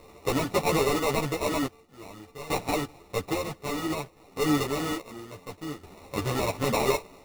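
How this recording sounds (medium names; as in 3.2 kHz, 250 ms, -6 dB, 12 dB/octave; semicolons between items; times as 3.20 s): a buzz of ramps at a fixed pitch in blocks of 16 samples; random-step tremolo 1.2 Hz, depth 85%; aliases and images of a low sample rate 1.6 kHz, jitter 0%; a shimmering, thickened sound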